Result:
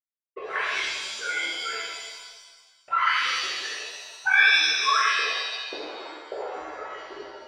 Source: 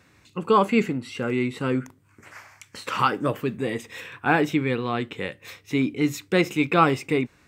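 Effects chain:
three sine waves on the formant tracks
transient designer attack +1 dB, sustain −7 dB
leveller curve on the samples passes 2
downward compressor 2.5 to 1, threshold −28 dBFS, peak gain reduction 12 dB
envelope filter 230–1,700 Hz, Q 5, up, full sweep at −23.5 dBFS
dead-zone distortion −50 dBFS
low-pass filter sweep 2,400 Hz → 510 Hz, 0:04.08–0:06.72
reverb with rising layers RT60 1.3 s, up +7 semitones, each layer −2 dB, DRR −8.5 dB

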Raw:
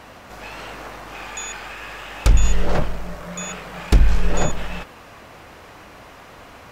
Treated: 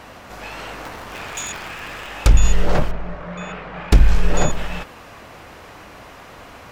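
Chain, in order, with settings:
0:00.85–0:02.08: sub-harmonics by changed cycles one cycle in 3, inverted
0:02.91–0:03.92: low-pass filter 2,500 Hz 12 dB per octave
level +2 dB

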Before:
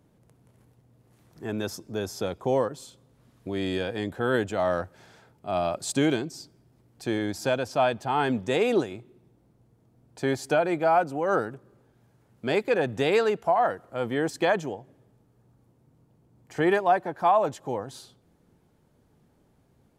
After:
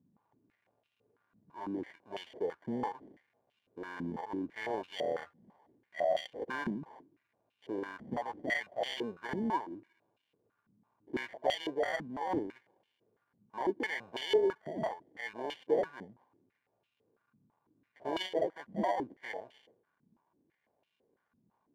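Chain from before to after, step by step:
wrong playback speed 48 kHz file played as 44.1 kHz
sample-rate reduction 1,300 Hz, jitter 0%
band-pass on a step sequencer 6 Hz 210–2,900 Hz

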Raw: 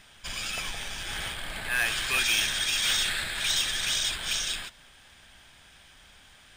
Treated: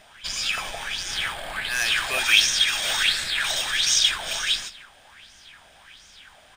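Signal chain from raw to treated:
low-shelf EQ 150 Hz −3 dB
on a send: single-tap delay 157 ms −17.5 dB
on the sum: auto-filter bell 1.4 Hz 600–6,200 Hz +15 dB

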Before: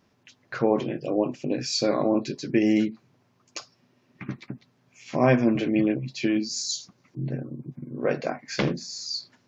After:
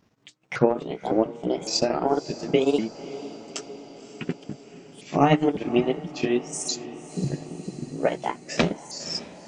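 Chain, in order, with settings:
pitch shifter swept by a sawtooth +5.5 semitones, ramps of 557 ms
low-shelf EQ 110 Hz +5.5 dB
transient designer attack +5 dB, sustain −11 dB
feedback delay with all-pass diffusion 551 ms, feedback 63%, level −15.5 dB

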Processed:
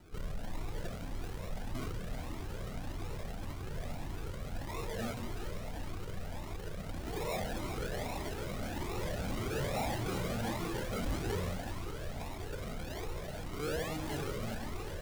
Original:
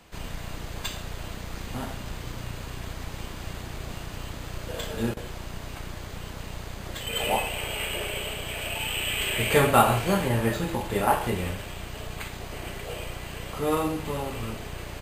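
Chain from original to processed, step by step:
low-pass filter 3,300 Hz 12 dB per octave
mains-hum notches 60/120 Hz
sample-and-hold swept by an LFO 40×, swing 60% 1.2 Hz
soft clipping −31.5 dBFS, distortion −4 dB
echo with a time of its own for lows and highs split 510 Hz, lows 184 ms, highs 378 ms, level −7.5 dB
flanger whose copies keep moving one way rising 1.7 Hz
level +2 dB

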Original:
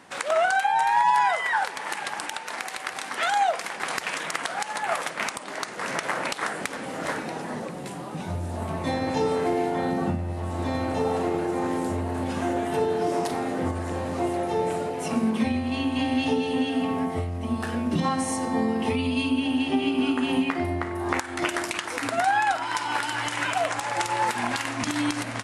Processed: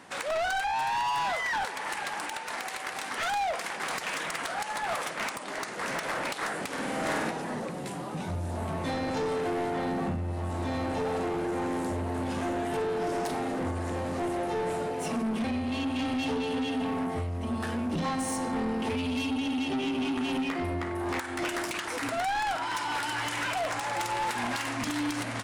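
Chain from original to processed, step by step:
soft clipping −26.5 dBFS, distortion −9 dB
0:06.67–0:07.31: flutter between parallel walls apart 8.5 metres, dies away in 0.97 s

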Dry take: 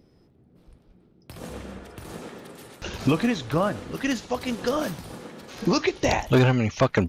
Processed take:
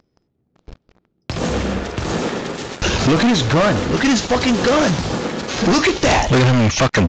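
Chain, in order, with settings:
high-shelf EQ 6,300 Hz +2.5 dB
leveller curve on the samples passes 5
downsampling to 16,000 Hz

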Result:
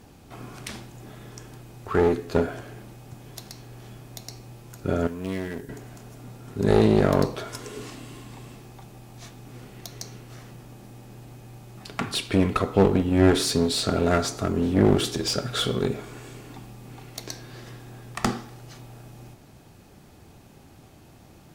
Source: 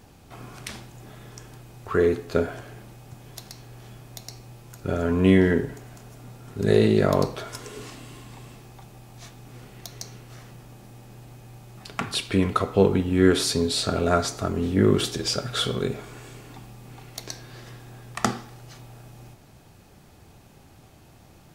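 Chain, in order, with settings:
parametric band 280 Hz +3.5 dB 1.3 octaves
asymmetric clip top −22 dBFS, bottom −5.5 dBFS
0:05.07–0:05.69: first-order pre-emphasis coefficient 0.8

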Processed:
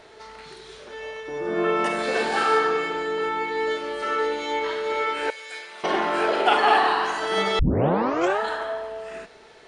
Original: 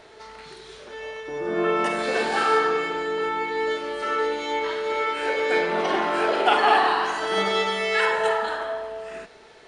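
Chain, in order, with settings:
0:05.30–0:05.84: first difference
0:07.59: tape start 0.82 s

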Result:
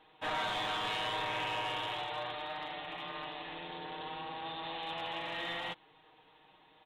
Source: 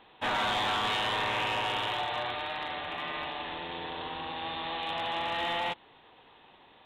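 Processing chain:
comb filter 6.4 ms, depth 71%
level −7.5 dB

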